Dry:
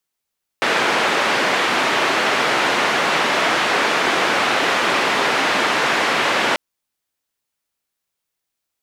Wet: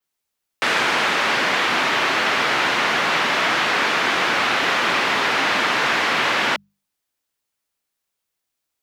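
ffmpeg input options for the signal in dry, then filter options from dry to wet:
-f lavfi -i "anoisesrc=c=white:d=5.94:r=44100:seed=1,highpass=f=270,lowpass=f=2100,volume=-2.8dB"
-filter_complex "[0:a]bandreject=f=50:t=h:w=6,bandreject=f=100:t=h:w=6,bandreject=f=150:t=h:w=6,bandreject=f=200:t=h:w=6,adynamicequalizer=threshold=0.00631:dfrequency=9100:dqfactor=1:tfrequency=9100:tqfactor=1:attack=5:release=100:ratio=0.375:range=3:mode=cutabove:tftype=bell,acrossover=split=240|930[a][b][c];[b]alimiter=limit=-23dB:level=0:latency=1[d];[a][d][c]amix=inputs=3:normalize=0"

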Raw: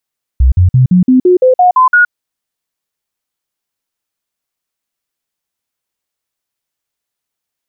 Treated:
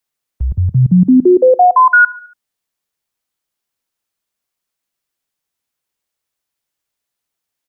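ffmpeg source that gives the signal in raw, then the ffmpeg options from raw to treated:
-f lavfi -i "aevalsrc='0.668*clip(min(mod(t,0.17),0.12-mod(t,0.17))/0.005,0,1)*sin(2*PI*64*pow(2,floor(t/0.17)/2)*mod(t,0.17))':d=1.7:s=44100"
-filter_complex "[0:a]acrossover=split=130|320|450[a][b][c][d];[a]alimiter=limit=-13dB:level=0:latency=1:release=383[e];[e][b][c][d]amix=inputs=4:normalize=0,aecho=1:1:71|142|213|284:0.0891|0.0499|0.0279|0.0157"

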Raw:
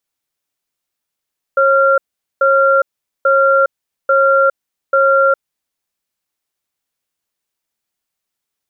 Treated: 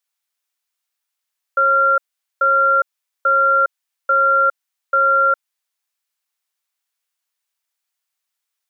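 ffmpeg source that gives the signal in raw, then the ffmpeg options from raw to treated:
-f lavfi -i "aevalsrc='0.282*(sin(2*PI*544*t)+sin(2*PI*1380*t))*clip(min(mod(t,0.84),0.41-mod(t,0.84))/0.005,0,1)':d=3.89:s=44100"
-af "highpass=890"

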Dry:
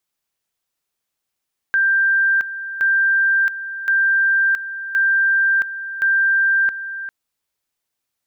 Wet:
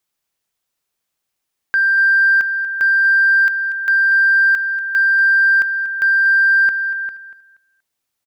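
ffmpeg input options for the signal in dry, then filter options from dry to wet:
-f lavfi -i "aevalsrc='pow(10,(-13-12.5*gte(mod(t,1.07),0.67))/20)*sin(2*PI*1580*t)':d=5.35:s=44100"
-filter_complex "[0:a]asplit=2[a][b];[b]volume=16.5dB,asoftclip=hard,volume=-16.5dB,volume=-11dB[c];[a][c]amix=inputs=2:normalize=0,aecho=1:1:238|476|714:0.211|0.055|0.0143"

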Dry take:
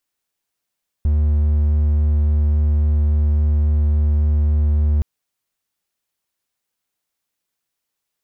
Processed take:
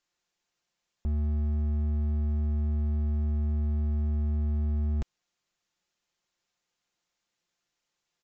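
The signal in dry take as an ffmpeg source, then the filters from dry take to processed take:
-f lavfi -i "aevalsrc='0.282*(1-4*abs(mod(74.7*t+0.25,1)-0.5))':d=3.97:s=44100"
-af "aecho=1:1:5.7:0.41,aresample=16000,asoftclip=type=hard:threshold=-26dB,aresample=44100"

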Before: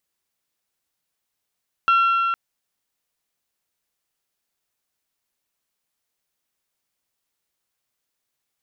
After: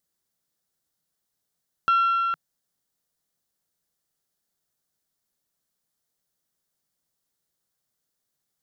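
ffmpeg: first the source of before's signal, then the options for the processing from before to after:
-f lavfi -i "aevalsrc='0.224*pow(10,-3*t/3.92)*sin(2*PI*1360*t)+0.0708*pow(10,-3*t/3.184)*sin(2*PI*2720*t)+0.0224*pow(10,-3*t/3.015)*sin(2*PI*3264*t)+0.00708*pow(10,-3*t/2.819)*sin(2*PI*4080*t)+0.00224*pow(10,-3*t/2.586)*sin(2*PI*5440*t)':d=0.46:s=44100"
-af "equalizer=f=160:t=o:w=0.67:g=6,equalizer=f=1k:t=o:w=0.67:g=-4,equalizer=f=2.5k:t=o:w=0.67:g=-10"

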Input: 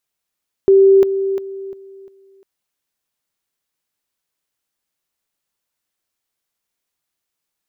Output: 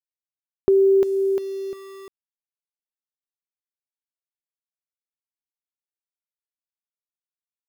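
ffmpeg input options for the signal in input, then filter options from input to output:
-f lavfi -i "aevalsrc='pow(10,(-6-10*floor(t/0.35))/20)*sin(2*PI*389*t)':d=1.75:s=44100"
-af "acompressor=threshold=-19dB:ratio=2,aeval=exprs='val(0)*gte(abs(val(0)),0.0106)':c=same"

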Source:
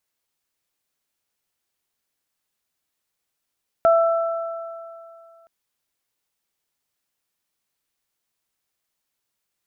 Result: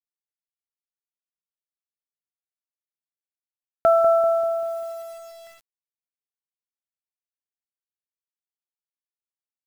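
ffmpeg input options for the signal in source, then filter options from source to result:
-f lavfi -i "aevalsrc='0.266*pow(10,-3*t/2.44)*sin(2*PI*666*t)+0.112*pow(10,-3*t/2.52)*sin(2*PI*1332*t)':d=1.62:s=44100"
-filter_complex "[0:a]asplit=2[a][b];[b]adelay=195,lowpass=f=1.4k:p=1,volume=-7.5dB,asplit=2[c][d];[d]adelay=195,lowpass=f=1.4k:p=1,volume=0.52,asplit=2[e][f];[f]adelay=195,lowpass=f=1.4k:p=1,volume=0.52,asplit=2[g][h];[h]adelay=195,lowpass=f=1.4k:p=1,volume=0.52,asplit=2[i][j];[j]adelay=195,lowpass=f=1.4k:p=1,volume=0.52,asplit=2[k][l];[l]adelay=195,lowpass=f=1.4k:p=1,volume=0.52[m];[c][e][g][i][k][m]amix=inputs=6:normalize=0[n];[a][n]amix=inputs=2:normalize=0,acrusher=bits=7:mix=0:aa=0.000001,adynamicequalizer=threshold=0.0316:dfrequency=1600:dqfactor=0.7:tfrequency=1600:tqfactor=0.7:attack=5:release=100:ratio=0.375:range=2.5:mode=cutabove:tftype=highshelf"

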